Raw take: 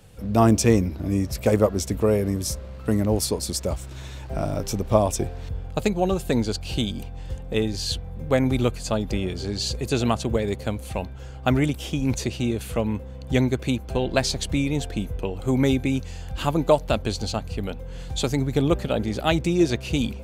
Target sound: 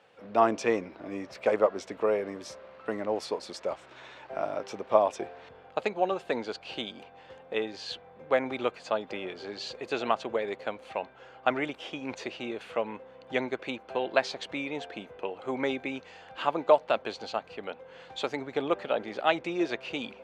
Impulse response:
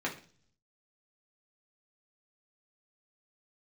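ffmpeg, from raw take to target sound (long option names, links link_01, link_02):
-af "highpass=560,lowpass=2500"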